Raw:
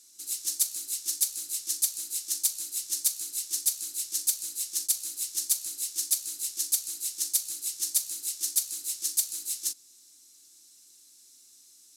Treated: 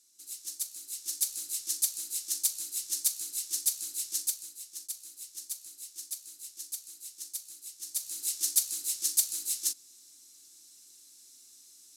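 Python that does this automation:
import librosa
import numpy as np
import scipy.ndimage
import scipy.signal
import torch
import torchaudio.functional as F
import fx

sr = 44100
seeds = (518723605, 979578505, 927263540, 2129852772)

y = fx.gain(x, sr, db=fx.line((0.74, -9.0), (1.34, -2.0), (4.18, -2.0), (4.59, -12.0), (7.81, -12.0), (8.25, 0.5)))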